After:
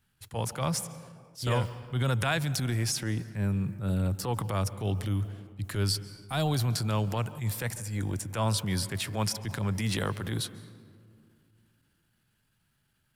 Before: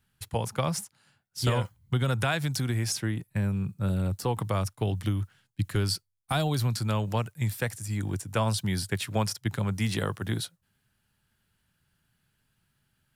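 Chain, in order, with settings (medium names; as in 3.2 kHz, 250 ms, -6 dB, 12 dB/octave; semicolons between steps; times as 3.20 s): on a send at -18.5 dB: reverberation RT60 2.3 s, pre-delay 138 ms; on the sum: transient shaper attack -9 dB, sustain +3 dB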